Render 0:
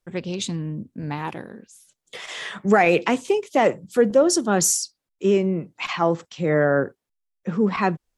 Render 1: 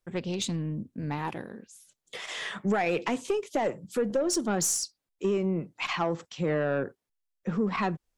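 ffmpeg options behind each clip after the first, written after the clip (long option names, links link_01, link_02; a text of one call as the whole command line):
ffmpeg -i in.wav -af "acompressor=threshold=-19dB:ratio=5,aeval=exprs='(tanh(6.31*val(0)+0.15)-tanh(0.15))/6.31':channel_layout=same,volume=-2.5dB" out.wav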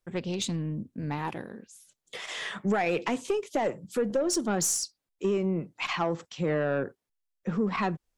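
ffmpeg -i in.wav -af anull out.wav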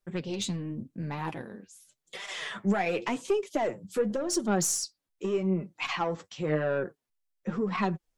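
ffmpeg -i in.wav -af "flanger=delay=5:depth=5.6:regen=29:speed=0.89:shape=sinusoidal,volume=2.5dB" out.wav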